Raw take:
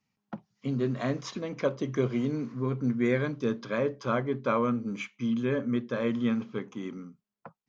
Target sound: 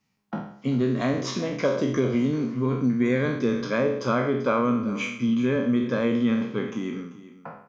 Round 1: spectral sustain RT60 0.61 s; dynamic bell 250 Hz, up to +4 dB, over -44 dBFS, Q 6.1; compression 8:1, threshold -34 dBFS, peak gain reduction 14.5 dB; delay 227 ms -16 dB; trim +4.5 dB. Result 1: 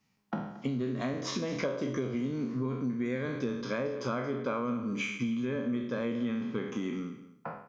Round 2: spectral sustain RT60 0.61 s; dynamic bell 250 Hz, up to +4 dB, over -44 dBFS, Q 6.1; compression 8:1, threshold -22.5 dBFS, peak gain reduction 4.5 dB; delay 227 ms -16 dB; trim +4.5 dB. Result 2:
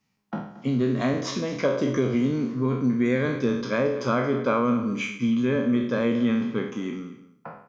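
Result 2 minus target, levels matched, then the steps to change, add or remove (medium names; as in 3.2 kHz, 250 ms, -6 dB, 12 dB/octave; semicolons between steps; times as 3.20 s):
echo 163 ms early
change: delay 390 ms -16 dB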